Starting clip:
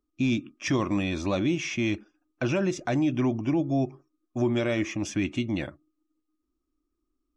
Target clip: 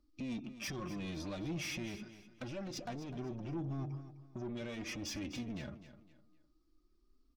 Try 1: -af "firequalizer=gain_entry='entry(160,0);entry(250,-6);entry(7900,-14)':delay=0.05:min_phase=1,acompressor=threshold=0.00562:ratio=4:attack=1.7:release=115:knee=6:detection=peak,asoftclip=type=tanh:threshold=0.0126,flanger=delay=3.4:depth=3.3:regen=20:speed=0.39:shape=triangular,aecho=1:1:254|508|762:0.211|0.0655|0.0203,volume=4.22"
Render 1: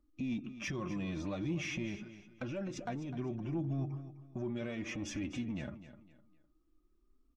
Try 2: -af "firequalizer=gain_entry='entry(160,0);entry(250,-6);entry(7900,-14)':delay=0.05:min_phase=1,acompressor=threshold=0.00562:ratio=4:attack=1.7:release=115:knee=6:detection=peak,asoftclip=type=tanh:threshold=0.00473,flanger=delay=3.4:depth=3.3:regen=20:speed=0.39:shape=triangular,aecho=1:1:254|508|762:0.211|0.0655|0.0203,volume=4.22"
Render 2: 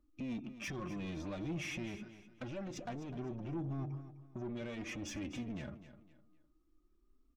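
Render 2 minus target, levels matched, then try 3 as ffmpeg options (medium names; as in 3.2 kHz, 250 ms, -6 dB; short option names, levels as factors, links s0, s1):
4 kHz band -4.0 dB
-af "firequalizer=gain_entry='entry(160,0);entry(250,-6);entry(7900,-14)':delay=0.05:min_phase=1,acompressor=threshold=0.00562:ratio=4:attack=1.7:release=115:knee=6:detection=peak,equalizer=f=4700:t=o:w=0.61:g=13,asoftclip=type=tanh:threshold=0.00473,flanger=delay=3.4:depth=3.3:regen=20:speed=0.39:shape=triangular,aecho=1:1:254|508|762:0.211|0.0655|0.0203,volume=4.22"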